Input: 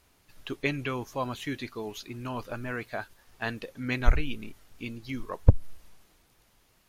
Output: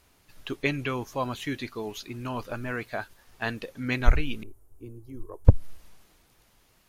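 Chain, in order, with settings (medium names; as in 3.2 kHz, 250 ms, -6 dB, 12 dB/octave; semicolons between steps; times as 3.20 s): 4.43–5.45 s: FFT filter 110 Hz 0 dB, 170 Hz -22 dB, 360 Hz 0 dB, 600 Hz -10 dB, 1 kHz -11 dB, 1.9 kHz -26 dB, 4.3 kHz -29 dB, 9.2 kHz -7 dB; trim +2 dB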